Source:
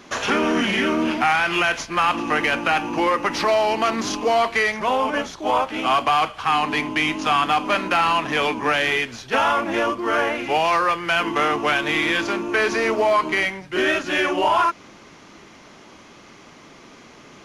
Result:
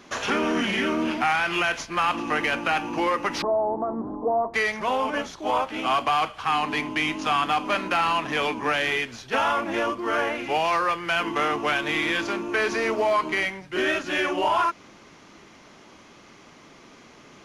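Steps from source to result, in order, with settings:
0:03.42–0:04.54: inverse Chebyshev low-pass filter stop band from 2,400 Hz, stop band 50 dB
level −4 dB

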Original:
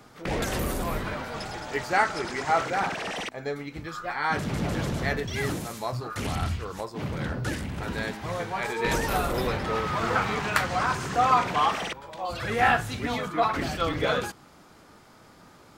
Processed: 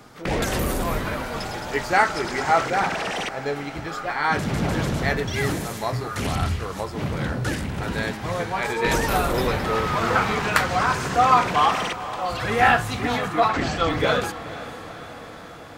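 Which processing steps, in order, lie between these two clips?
0:13.48–0:13.90: linear-phase brick-wall low-pass 8,200 Hz
feedback delay with all-pass diffusion 472 ms, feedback 68%, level −15 dB
level +4.5 dB

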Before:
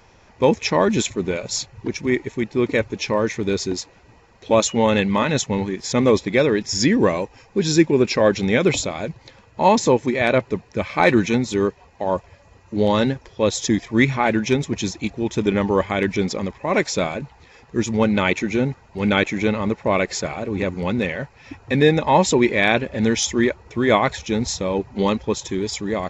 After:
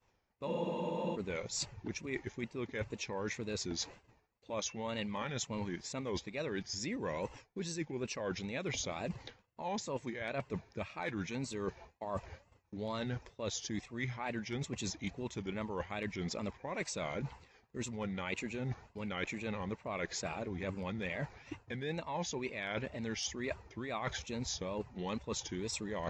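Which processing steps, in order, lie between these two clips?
downward expander −39 dBFS
dynamic equaliser 320 Hz, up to −5 dB, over −28 dBFS, Q 1
reversed playback
downward compressor 12 to 1, threshold −33 dBFS, peak gain reduction 22 dB
reversed playback
tape wow and flutter 140 cents
frozen spectrum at 0:00.49, 0.65 s
level −2.5 dB

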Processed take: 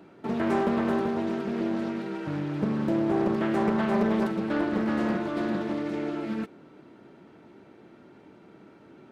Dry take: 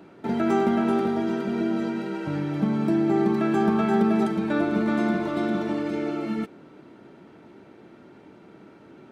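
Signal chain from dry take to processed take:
highs frequency-modulated by the lows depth 0.58 ms
level −3 dB

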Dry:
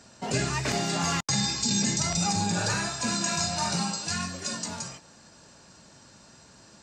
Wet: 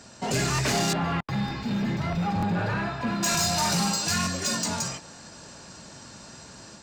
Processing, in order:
automatic gain control gain up to 3.5 dB
soft clipping −25 dBFS, distortion −10 dB
0:00.93–0:03.23: high-frequency loss of the air 470 metres
regular buffer underruns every 0.92 s, samples 1,024, repeat, from 0:00.54
level +4.5 dB

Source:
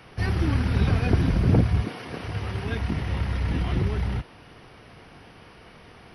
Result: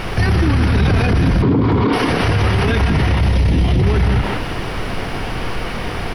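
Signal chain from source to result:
0:03.20–0:03.82: parametric band 1,400 Hz −10 dB 1.3 octaves
background noise brown −47 dBFS
0:01.42–0:01.93: loudspeaker in its box 120–3,900 Hz, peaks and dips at 280 Hz +9 dB, 410 Hz +6 dB, 660 Hz −7 dB, 1,000 Hz +10 dB, 1,700 Hz −6 dB, 2,700 Hz −8 dB
far-end echo of a speakerphone 170 ms, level −7 dB
boost into a limiter +29 dB
level −6.5 dB

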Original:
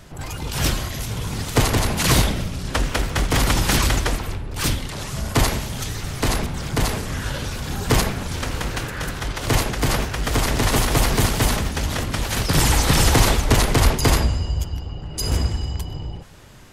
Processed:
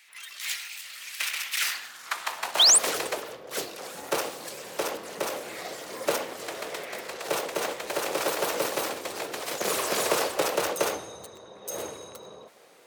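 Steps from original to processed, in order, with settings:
high-pass filter sweep 1,700 Hz → 370 Hz, 0:01.98–0:03.86
sound drawn into the spectrogram rise, 0:03.37–0:03.62, 2,300–7,500 Hz −8 dBFS
change of speed 1.3×
level −8.5 dB

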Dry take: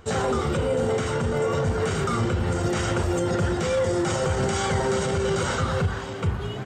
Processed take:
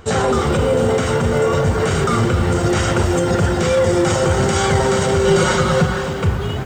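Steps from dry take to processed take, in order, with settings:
0:05.26–0:06.02: comb filter 5.5 ms, depth 69%
feedback echo at a low word length 265 ms, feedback 35%, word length 8 bits, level −10 dB
level +7.5 dB

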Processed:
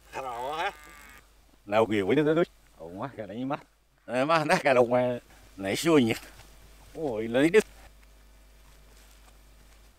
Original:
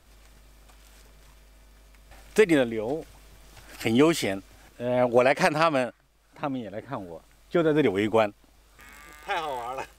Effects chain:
played backwards from end to start
level −1.5 dB

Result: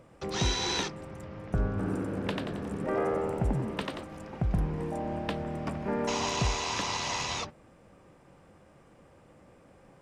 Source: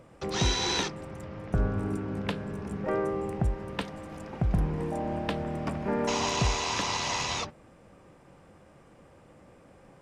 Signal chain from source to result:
0:01.70–0:04.04: echo with shifted repeats 90 ms, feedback 44%, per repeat +82 Hz, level −3 dB
level −2 dB

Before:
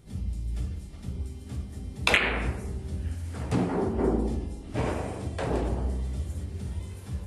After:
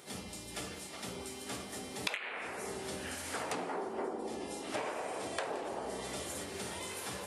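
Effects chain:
high-pass filter 550 Hz 12 dB per octave
downward compressor 16 to 1, threshold −46 dBFS, peak gain reduction 30 dB
level +11.5 dB

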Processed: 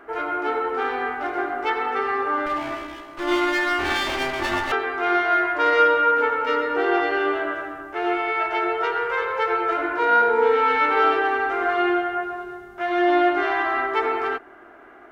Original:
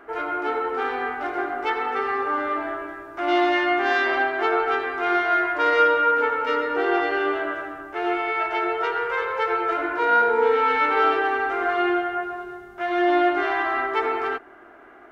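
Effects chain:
0:02.46–0:04.72: lower of the sound and its delayed copy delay 3.4 ms
level +1 dB

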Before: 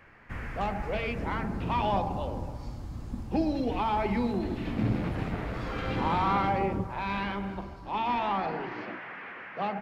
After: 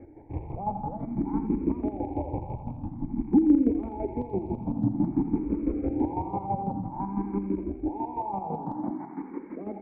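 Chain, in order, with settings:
loose part that buzzes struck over −37 dBFS, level −26 dBFS
downward compressor 4 to 1, threshold −37 dBFS, peak gain reduction 12.5 dB
formant resonators in series u
square-wave tremolo 6 Hz, depth 60%, duty 30%
on a send: feedback echo with a high-pass in the loop 84 ms, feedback 81%, high-pass 840 Hz, level −8.5 dB
on the sum: boost into a limiter +36 dB
frequency shifter mixed with the dry sound +0.51 Hz
level −8.5 dB

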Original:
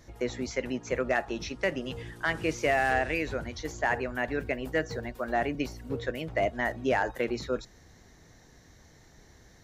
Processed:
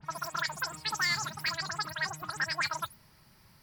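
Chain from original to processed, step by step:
every frequency bin delayed by itself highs late, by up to 249 ms
change of speed 2.66×
parametric band 450 Hz −13 dB 0.93 octaves
level −2 dB

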